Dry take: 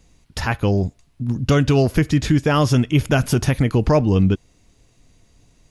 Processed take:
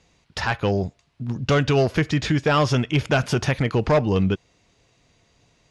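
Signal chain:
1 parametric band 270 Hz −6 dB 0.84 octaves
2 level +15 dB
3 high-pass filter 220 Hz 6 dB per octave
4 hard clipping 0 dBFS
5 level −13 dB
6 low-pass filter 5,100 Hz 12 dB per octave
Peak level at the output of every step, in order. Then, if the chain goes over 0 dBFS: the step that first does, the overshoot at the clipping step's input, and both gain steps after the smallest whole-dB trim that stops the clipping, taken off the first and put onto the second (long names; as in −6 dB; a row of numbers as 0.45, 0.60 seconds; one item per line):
−6.0, +9.0, +8.5, 0.0, −13.0, −12.5 dBFS
step 2, 8.5 dB
step 2 +6 dB, step 5 −4 dB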